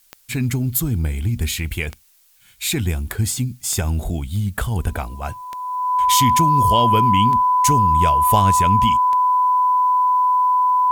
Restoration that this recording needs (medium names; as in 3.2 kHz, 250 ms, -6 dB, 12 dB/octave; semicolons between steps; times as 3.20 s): de-click; band-stop 1 kHz, Q 30; expander -30 dBFS, range -21 dB